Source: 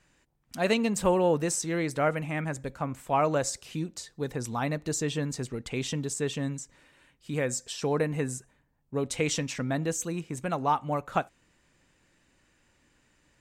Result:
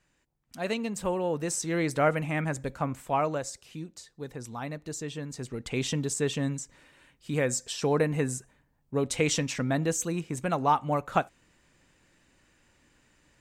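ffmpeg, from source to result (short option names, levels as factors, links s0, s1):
-af "volume=3.35,afade=t=in:st=1.3:d=0.57:silence=0.421697,afade=t=out:st=2.86:d=0.58:silence=0.375837,afade=t=in:st=5.29:d=0.49:silence=0.375837"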